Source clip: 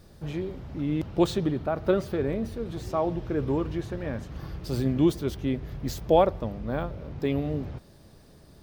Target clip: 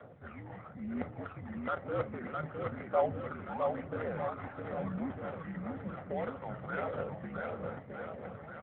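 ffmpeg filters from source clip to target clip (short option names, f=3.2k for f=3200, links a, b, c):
-filter_complex "[0:a]bandreject=f=50:t=h:w=6,bandreject=f=100:t=h:w=6,bandreject=f=150:t=h:w=6,asplit=2[a][b];[b]asoftclip=type=tanh:threshold=-17dB,volume=-4.5dB[c];[a][c]amix=inputs=2:normalize=0,alimiter=limit=-17.5dB:level=0:latency=1:release=13,areverse,acompressor=threshold=-34dB:ratio=12,areverse,tiltshelf=f=820:g=-9.5,highpass=f=180:t=q:w=0.5412,highpass=f=180:t=q:w=1.307,lowpass=f=2.2k:t=q:w=0.5176,lowpass=f=2.2k:t=q:w=0.7071,lowpass=f=2.2k:t=q:w=1.932,afreqshift=-71,aphaser=in_gain=1:out_gain=1:delay=1.2:decay=0.63:speed=1:type=triangular,lowshelf=f=240:g=-6,aecho=1:1:1.5:0.67,adynamicsmooth=sensitivity=7.5:basefreq=860,aecho=1:1:660|1254|1789|2270|2703:0.631|0.398|0.251|0.158|0.1,volume=4.5dB" -ar 8000 -c:a libopencore_amrnb -b:a 7950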